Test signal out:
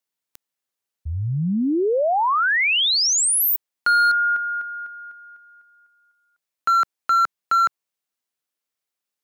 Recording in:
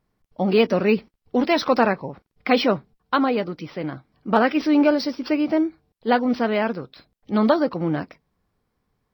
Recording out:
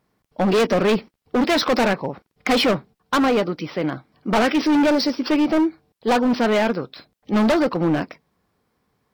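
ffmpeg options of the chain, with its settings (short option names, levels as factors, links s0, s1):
-af "highpass=f=160:p=1,asoftclip=type=hard:threshold=0.0891,volume=2.11"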